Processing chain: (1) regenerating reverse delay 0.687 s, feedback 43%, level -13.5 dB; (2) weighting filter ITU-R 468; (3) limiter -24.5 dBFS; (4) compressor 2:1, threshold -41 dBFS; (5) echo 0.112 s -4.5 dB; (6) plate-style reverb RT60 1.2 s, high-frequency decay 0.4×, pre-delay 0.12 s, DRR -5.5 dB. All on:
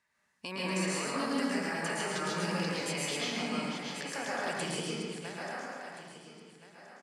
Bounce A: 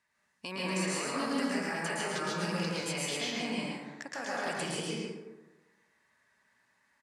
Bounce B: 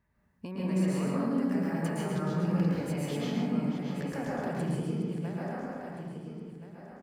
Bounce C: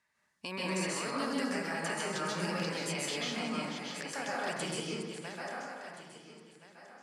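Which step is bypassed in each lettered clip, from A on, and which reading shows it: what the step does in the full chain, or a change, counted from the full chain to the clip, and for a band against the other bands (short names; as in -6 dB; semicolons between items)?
1, momentary loudness spread change -7 LU; 2, 125 Hz band +15.0 dB; 5, echo-to-direct 7.0 dB to 5.5 dB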